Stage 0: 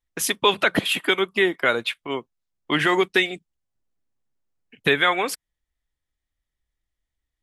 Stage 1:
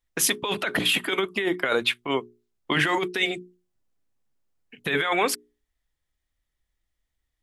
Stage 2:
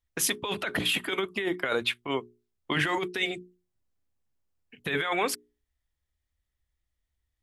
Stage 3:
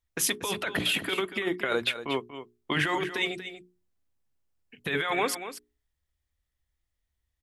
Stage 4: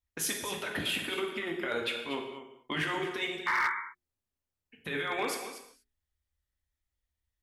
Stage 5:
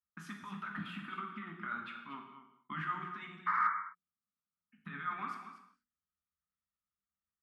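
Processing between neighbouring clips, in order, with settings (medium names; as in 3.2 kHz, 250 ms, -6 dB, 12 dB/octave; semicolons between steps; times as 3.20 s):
hum notches 60/120/180/240/300/360/420 Hz; compressor with a negative ratio -23 dBFS, ratio -1
peaking EQ 76 Hz +10 dB 0.93 oct; trim -4.5 dB
delay 237 ms -11.5 dB
painted sound noise, 3.46–3.69 s, 860–2300 Hz -22 dBFS; gated-style reverb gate 270 ms falling, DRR 1.5 dB; hard clipper -16 dBFS, distortion -21 dB; trim -7 dB
two resonant band-passes 490 Hz, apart 2.7 oct; trim +5 dB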